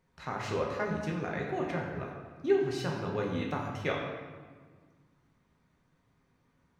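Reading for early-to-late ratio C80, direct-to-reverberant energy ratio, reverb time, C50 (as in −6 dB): 4.5 dB, −2.0 dB, 1.6 s, 2.5 dB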